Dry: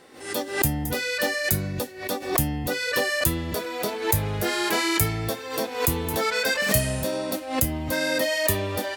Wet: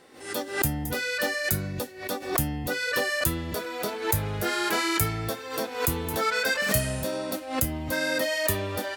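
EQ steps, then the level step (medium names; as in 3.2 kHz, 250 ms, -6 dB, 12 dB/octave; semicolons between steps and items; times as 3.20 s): dynamic bell 1.4 kHz, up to +6 dB, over -46 dBFS, Q 4.4; -3.0 dB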